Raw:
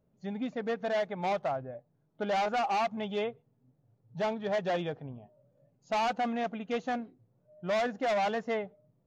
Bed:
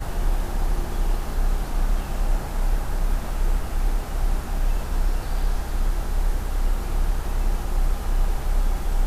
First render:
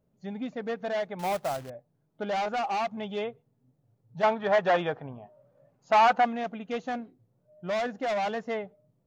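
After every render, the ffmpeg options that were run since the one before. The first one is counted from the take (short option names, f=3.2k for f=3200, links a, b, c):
-filter_complex "[0:a]asettb=1/sr,asplit=3[a][b][c];[a]atrim=end=1.194[d];[b]atrim=start=1.19:end=1.7,asetpts=PTS-STARTPTS,afade=t=in:d=0.004:c=qsin,afade=t=out:st=0.506:d=0.004:c=qsin,acrusher=bits=2:mode=log:mix=0:aa=0.000001[e];[c]atrim=start=1.696[f];[d][e]acrossfade=d=0.004:c1=hsin:c2=qsin[g];[g][f]acrossfade=d=0.004:c1=qsin:c2=hsin,asettb=1/sr,asplit=3[h][i][j];[h]atrim=end=4.234[k];[i]atrim=start=4.23:end=6.25,asetpts=PTS-STARTPTS,afade=t=in:d=0.004:c=qsin,afade=t=out:st=2.016:d=0.004:c=qsin,equalizer=f=1.2k:t=o:w=2.3:g=12[l];[j]atrim=start=6.246[m];[k][l]acrossfade=d=0.004:c1=hsin:c2=qsin[n];[n][m]acrossfade=d=0.004:c1=qsin:c2=hsin"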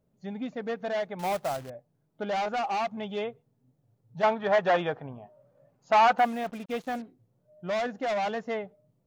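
-filter_complex "[0:a]asettb=1/sr,asplit=3[a][b][c];[a]atrim=end=6.184[d];[b]atrim=start=6.18:end=7.02,asetpts=PTS-STARTPTS,afade=t=in:d=0.004:c=qsin,afade=t=out:st=0.836:d=0.004:c=qsin,acrusher=bits=7:mix=0:aa=0.5[e];[c]atrim=start=7.016[f];[d][e]acrossfade=d=0.004:c1=hsin:c2=qsin[g];[g][f]acrossfade=d=0.004:c1=qsin:c2=hsin"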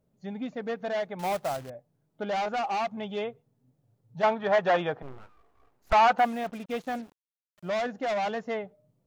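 -filter_complex "[0:a]asettb=1/sr,asplit=3[a][b][c];[a]atrim=end=5.024[d];[b]atrim=start=5.02:end=5.93,asetpts=PTS-STARTPTS,afade=t=in:d=0.004:c=qsin,afade=t=out:st=0.906:d=0.004:c=qsin,aeval=exprs='abs(val(0))':c=same[e];[c]atrim=start=5.926[f];[d][e]acrossfade=d=0.004:c1=hsin:c2=qsin[g];[g][f]acrossfade=d=0.004:c1=qsin:c2=hsin,asettb=1/sr,asplit=3[h][i][j];[h]atrim=end=7.024[k];[i]atrim=start=7.02:end=7.69,asetpts=PTS-STARTPTS,afade=t=in:d=0.004:c=qsin,afade=t=out:st=0.666:d=0.004:c=qsin,aeval=exprs='val(0)*gte(abs(val(0)),0.00251)':c=same[l];[j]atrim=start=7.686[m];[k][l]acrossfade=d=0.004:c1=hsin:c2=qsin[n];[n][m]acrossfade=d=0.004:c1=qsin:c2=hsin"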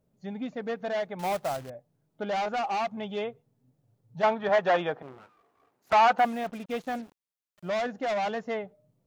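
-filter_complex "[0:a]asettb=1/sr,asplit=3[a][b][c];[a]atrim=end=4.494[d];[b]atrim=start=4.49:end=6.25,asetpts=PTS-STARTPTS,afade=t=in:d=0.004:c=qsin,afade=t=out:st=1.756:d=0.004:c=qsin,highpass=160[e];[c]atrim=start=6.246[f];[d][e]acrossfade=d=0.004:c1=hsin:c2=qsin[g];[g][f]acrossfade=d=0.004:c1=qsin:c2=hsin"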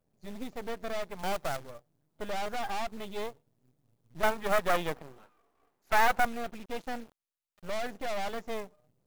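-af "aeval=exprs='max(val(0),0)':c=same,acrusher=bits=4:mode=log:mix=0:aa=0.000001"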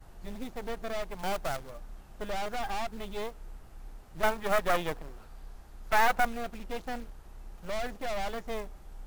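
-filter_complex "[1:a]volume=-23.5dB[a];[0:a][a]amix=inputs=2:normalize=0"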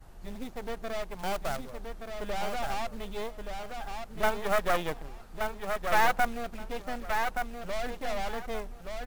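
-af "aecho=1:1:1174|2348|3522:0.531|0.106|0.0212"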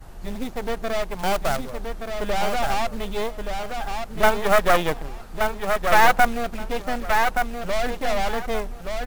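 -af "volume=9.5dB,alimiter=limit=-3dB:level=0:latency=1"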